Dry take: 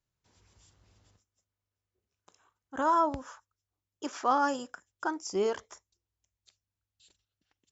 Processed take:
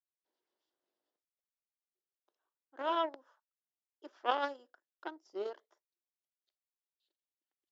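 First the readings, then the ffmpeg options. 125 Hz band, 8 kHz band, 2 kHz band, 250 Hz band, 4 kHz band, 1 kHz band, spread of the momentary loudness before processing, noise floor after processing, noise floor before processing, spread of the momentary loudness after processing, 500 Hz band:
under -25 dB, n/a, -6.5 dB, -12.0 dB, -0.5 dB, -8.5 dB, 16 LU, under -85 dBFS, under -85 dBFS, 22 LU, -6.5 dB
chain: -af "aeval=exprs='0.2*(cos(1*acos(clip(val(0)/0.2,-1,1)))-cos(1*PI/2))+0.0562*(cos(3*acos(clip(val(0)/0.2,-1,1)))-cos(3*PI/2))+0.002*(cos(4*acos(clip(val(0)/0.2,-1,1)))-cos(4*PI/2))+0.00141*(cos(7*acos(clip(val(0)/0.2,-1,1)))-cos(7*PI/2))':c=same,highpass=f=310:w=0.5412,highpass=f=310:w=1.3066,equalizer=f=340:t=q:w=4:g=6,equalizer=f=610:t=q:w=4:g=5,equalizer=f=1.2k:t=q:w=4:g=-3,equalizer=f=2.4k:t=q:w=4:g=-8,lowpass=f=4.4k:w=0.5412,lowpass=f=4.4k:w=1.3066"

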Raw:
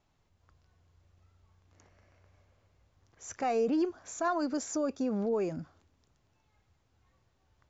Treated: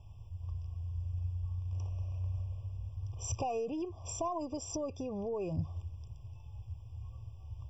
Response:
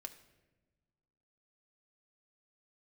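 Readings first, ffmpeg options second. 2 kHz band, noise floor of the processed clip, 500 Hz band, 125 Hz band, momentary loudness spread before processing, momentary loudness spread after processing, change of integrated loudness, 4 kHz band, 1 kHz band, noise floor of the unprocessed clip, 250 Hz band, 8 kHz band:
-13.5 dB, -51 dBFS, -5.5 dB, +14.0 dB, 16 LU, 12 LU, -7.5 dB, -1.5 dB, -4.5 dB, -73 dBFS, -7.5 dB, n/a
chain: -af "acompressor=threshold=-42dB:ratio=5,lowshelf=f=150:t=q:w=3:g=13.5,afftfilt=real='re*eq(mod(floor(b*sr/1024/1200),2),0)':imag='im*eq(mod(floor(b*sr/1024/1200),2),0)':win_size=1024:overlap=0.75,volume=9dB"

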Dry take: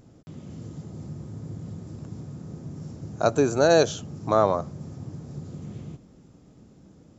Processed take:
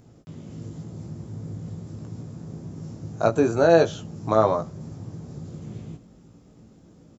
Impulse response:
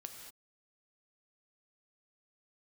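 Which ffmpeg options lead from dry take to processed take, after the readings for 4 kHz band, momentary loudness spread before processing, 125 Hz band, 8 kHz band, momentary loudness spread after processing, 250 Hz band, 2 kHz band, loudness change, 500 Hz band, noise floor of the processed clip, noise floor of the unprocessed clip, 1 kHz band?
-5.0 dB, 19 LU, +1.5 dB, n/a, 19 LU, +2.0 dB, +0.5 dB, +1.5 dB, +1.5 dB, -53 dBFS, -54 dBFS, +1.0 dB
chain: -filter_complex "[0:a]acrossover=split=3300[a][b];[b]acompressor=threshold=-44dB:ratio=4:attack=1:release=60[c];[a][c]amix=inputs=2:normalize=0,asplit=2[d][e];[e]adelay=18,volume=-5.5dB[f];[d][f]amix=inputs=2:normalize=0"

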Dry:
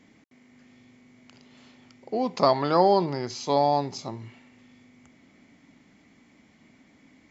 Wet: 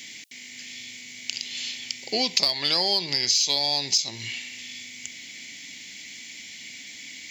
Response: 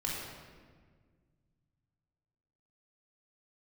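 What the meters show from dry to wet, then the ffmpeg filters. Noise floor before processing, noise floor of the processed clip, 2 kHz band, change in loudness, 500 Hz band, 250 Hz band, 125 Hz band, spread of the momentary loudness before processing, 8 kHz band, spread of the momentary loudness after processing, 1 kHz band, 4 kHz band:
-59 dBFS, -42 dBFS, +11.0 dB, +1.0 dB, -10.0 dB, -8.0 dB, -8.5 dB, 16 LU, n/a, 18 LU, -11.0 dB, +16.5 dB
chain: -af "aexciter=amount=12:drive=8.8:freq=2k,acompressor=threshold=-20dB:ratio=6"

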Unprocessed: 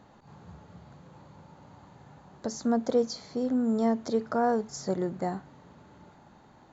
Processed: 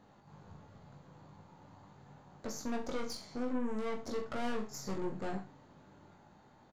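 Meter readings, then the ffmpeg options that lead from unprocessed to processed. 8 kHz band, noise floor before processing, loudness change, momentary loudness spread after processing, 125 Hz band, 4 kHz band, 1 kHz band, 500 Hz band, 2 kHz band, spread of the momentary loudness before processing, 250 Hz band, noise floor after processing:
n/a, -56 dBFS, -10.0 dB, 20 LU, -7.5 dB, -4.5 dB, -10.5 dB, -11.0 dB, -3.0 dB, 8 LU, -10.5 dB, -62 dBFS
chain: -af "aeval=exprs='(tanh(44.7*val(0)+0.75)-tanh(0.75))/44.7':c=same,aecho=1:1:20|42|66.2|92.82|122.1:0.631|0.398|0.251|0.158|0.1,volume=-3dB"

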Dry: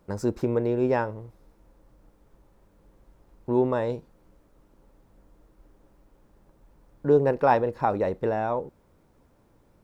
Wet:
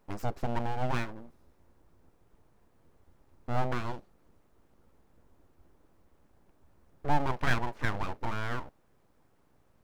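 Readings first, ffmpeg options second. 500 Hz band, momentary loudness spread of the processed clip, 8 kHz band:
-15.5 dB, 11 LU, n/a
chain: -af "bandreject=f=550:w=16,aeval=exprs='abs(val(0))':c=same,volume=-4dB"

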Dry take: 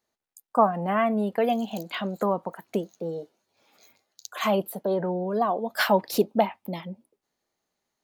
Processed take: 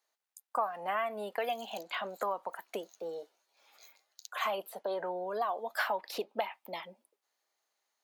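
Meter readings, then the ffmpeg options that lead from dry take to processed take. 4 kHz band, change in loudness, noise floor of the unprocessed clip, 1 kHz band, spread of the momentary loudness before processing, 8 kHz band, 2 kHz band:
-7.0 dB, -10.0 dB, -85 dBFS, -8.0 dB, 13 LU, -9.5 dB, -5.5 dB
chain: -filter_complex "[0:a]highpass=680,acrossover=split=1500|3600|7800[a][b][c][d];[a]acompressor=threshold=-32dB:ratio=4[e];[b]acompressor=threshold=-40dB:ratio=4[f];[c]acompressor=threshold=-55dB:ratio=4[g];[d]acompressor=threshold=-54dB:ratio=4[h];[e][f][g][h]amix=inputs=4:normalize=0"

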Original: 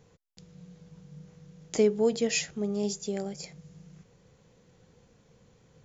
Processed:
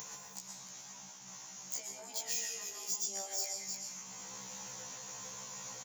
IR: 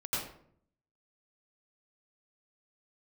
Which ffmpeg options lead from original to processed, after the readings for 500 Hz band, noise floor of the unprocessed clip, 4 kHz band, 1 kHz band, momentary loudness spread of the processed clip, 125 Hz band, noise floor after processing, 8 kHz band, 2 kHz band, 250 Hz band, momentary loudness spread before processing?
-23.0 dB, -63 dBFS, -3.0 dB, -2.5 dB, 12 LU, under -15 dB, -52 dBFS, n/a, -9.0 dB, -25.0 dB, 14 LU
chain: -filter_complex "[0:a]aecho=1:1:302:0.119,alimiter=level_in=1dB:limit=-24dB:level=0:latency=1:release=178,volume=-1dB,acompressor=mode=upward:threshold=-35dB:ratio=2.5,equalizer=f=160:t=o:w=0.67:g=-5,equalizer=f=400:t=o:w=0.67:g=-10,equalizer=f=1k:t=o:w=0.67:g=10,equalizer=f=2.5k:t=o:w=0.67:g=3,equalizer=f=6.3k:t=o:w=0.67:g=12,acompressor=threshold=-37dB:ratio=6,asoftclip=type=tanh:threshold=-34.5dB,highpass=f=90:w=0.5412,highpass=f=90:w=1.3066,asplit=2[a][b];[1:a]atrim=start_sample=2205,asetrate=30429,aresample=44100[c];[b][c]afir=irnorm=-1:irlink=0,volume=-6.5dB[d];[a][d]amix=inputs=2:normalize=0,afftfilt=real='re*lt(hypot(re,im),0.0631)':imag='im*lt(hypot(re,im),0.0631)':win_size=1024:overlap=0.75,aemphasis=mode=production:type=bsi,afftfilt=real='re*1.73*eq(mod(b,3),0)':imag='im*1.73*eq(mod(b,3),0)':win_size=2048:overlap=0.75,volume=-2.5dB"

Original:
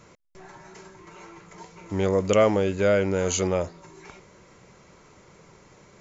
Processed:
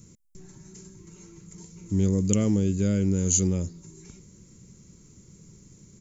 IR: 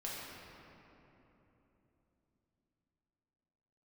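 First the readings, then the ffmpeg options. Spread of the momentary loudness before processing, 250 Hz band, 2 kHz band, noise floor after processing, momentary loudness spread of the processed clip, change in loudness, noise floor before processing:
9 LU, +4.0 dB, -14.5 dB, -55 dBFS, 8 LU, -1.0 dB, -54 dBFS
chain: -af "firequalizer=gain_entry='entry(210,0);entry(630,-26);entry(7200,3)':delay=0.05:min_phase=1,volume=5.5dB"

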